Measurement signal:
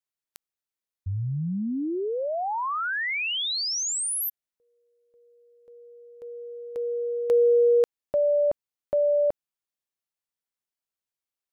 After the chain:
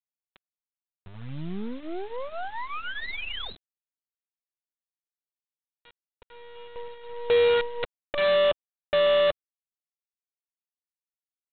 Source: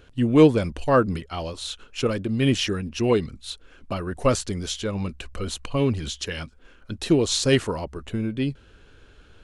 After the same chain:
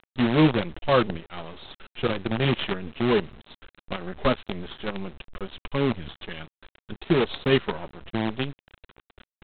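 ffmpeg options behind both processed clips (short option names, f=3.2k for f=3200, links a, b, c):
-af "flanger=delay=4.6:depth=1.3:regen=-23:speed=0.68:shape=triangular,aresample=8000,acrusher=bits=5:dc=4:mix=0:aa=0.000001,aresample=44100,volume=1.5dB"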